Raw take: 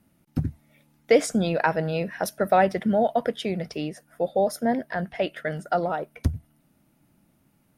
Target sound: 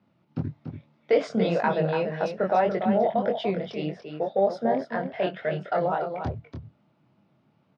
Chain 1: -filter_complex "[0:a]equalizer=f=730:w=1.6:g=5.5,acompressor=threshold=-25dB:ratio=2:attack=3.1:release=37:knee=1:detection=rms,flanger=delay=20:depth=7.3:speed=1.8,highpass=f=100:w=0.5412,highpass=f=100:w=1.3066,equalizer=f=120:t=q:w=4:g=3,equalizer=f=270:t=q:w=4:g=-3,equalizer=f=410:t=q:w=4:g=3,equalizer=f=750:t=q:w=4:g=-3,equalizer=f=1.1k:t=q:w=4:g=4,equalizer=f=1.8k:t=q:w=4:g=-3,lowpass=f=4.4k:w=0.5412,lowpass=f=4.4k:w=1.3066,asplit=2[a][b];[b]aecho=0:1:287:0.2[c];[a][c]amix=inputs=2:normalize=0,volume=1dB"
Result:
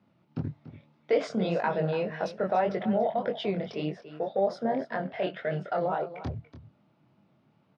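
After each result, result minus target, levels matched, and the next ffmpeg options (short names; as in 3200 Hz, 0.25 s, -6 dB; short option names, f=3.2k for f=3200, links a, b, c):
echo-to-direct -6.5 dB; compressor: peak gain reduction +3.5 dB
-filter_complex "[0:a]equalizer=f=730:w=1.6:g=5.5,acompressor=threshold=-25dB:ratio=2:attack=3.1:release=37:knee=1:detection=rms,flanger=delay=20:depth=7.3:speed=1.8,highpass=f=100:w=0.5412,highpass=f=100:w=1.3066,equalizer=f=120:t=q:w=4:g=3,equalizer=f=270:t=q:w=4:g=-3,equalizer=f=410:t=q:w=4:g=3,equalizer=f=750:t=q:w=4:g=-3,equalizer=f=1.1k:t=q:w=4:g=4,equalizer=f=1.8k:t=q:w=4:g=-3,lowpass=f=4.4k:w=0.5412,lowpass=f=4.4k:w=1.3066,asplit=2[a][b];[b]aecho=0:1:287:0.422[c];[a][c]amix=inputs=2:normalize=0,volume=1dB"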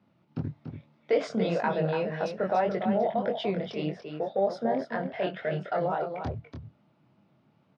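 compressor: peak gain reduction +3.5 dB
-filter_complex "[0:a]equalizer=f=730:w=1.6:g=5.5,acompressor=threshold=-17.5dB:ratio=2:attack=3.1:release=37:knee=1:detection=rms,flanger=delay=20:depth=7.3:speed=1.8,highpass=f=100:w=0.5412,highpass=f=100:w=1.3066,equalizer=f=120:t=q:w=4:g=3,equalizer=f=270:t=q:w=4:g=-3,equalizer=f=410:t=q:w=4:g=3,equalizer=f=750:t=q:w=4:g=-3,equalizer=f=1.1k:t=q:w=4:g=4,equalizer=f=1.8k:t=q:w=4:g=-3,lowpass=f=4.4k:w=0.5412,lowpass=f=4.4k:w=1.3066,asplit=2[a][b];[b]aecho=0:1:287:0.422[c];[a][c]amix=inputs=2:normalize=0,volume=1dB"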